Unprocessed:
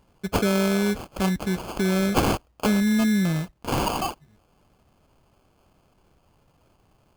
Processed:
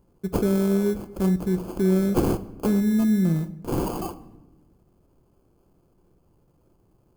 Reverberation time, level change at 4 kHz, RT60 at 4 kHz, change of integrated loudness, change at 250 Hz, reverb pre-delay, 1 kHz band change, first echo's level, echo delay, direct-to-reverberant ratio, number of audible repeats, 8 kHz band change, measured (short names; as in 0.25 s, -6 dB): 1.0 s, -12.0 dB, 0.70 s, 0.0 dB, +1.0 dB, 6 ms, -7.5 dB, none, none, 11.0 dB, none, -6.5 dB